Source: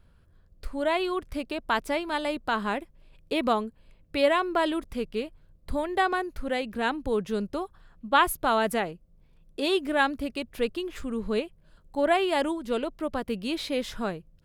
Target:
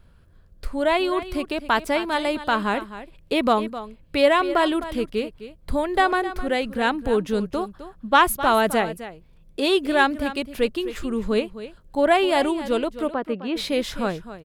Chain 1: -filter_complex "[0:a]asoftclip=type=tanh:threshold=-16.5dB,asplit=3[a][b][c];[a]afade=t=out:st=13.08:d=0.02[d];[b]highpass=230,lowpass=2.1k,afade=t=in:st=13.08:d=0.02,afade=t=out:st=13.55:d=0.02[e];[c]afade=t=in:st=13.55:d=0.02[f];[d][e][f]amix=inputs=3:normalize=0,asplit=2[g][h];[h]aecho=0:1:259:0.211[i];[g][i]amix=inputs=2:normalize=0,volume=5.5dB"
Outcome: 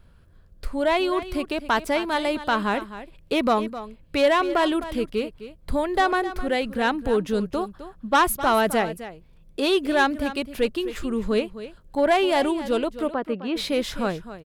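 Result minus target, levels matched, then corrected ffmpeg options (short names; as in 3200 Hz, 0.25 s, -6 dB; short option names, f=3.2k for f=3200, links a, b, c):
soft clip: distortion +15 dB
-filter_complex "[0:a]asoftclip=type=tanh:threshold=-6.5dB,asplit=3[a][b][c];[a]afade=t=out:st=13.08:d=0.02[d];[b]highpass=230,lowpass=2.1k,afade=t=in:st=13.08:d=0.02,afade=t=out:st=13.55:d=0.02[e];[c]afade=t=in:st=13.55:d=0.02[f];[d][e][f]amix=inputs=3:normalize=0,asplit=2[g][h];[h]aecho=0:1:259:0.211[i];[g][i]amix=inputs=2:normalize=0,volume=5.5dB"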